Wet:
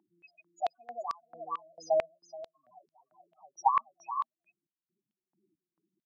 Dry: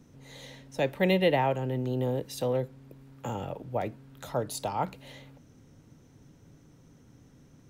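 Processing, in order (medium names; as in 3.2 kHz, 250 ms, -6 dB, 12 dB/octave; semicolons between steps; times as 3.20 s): tape speed +27%; loudest bins only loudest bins 4; on a send: delay 427 ms -10.5 dB; on the sum: resampled via 16 kHz; step-sequenced high-pass 4.5 Hz 840–4900 Hz; trim +3.5 dB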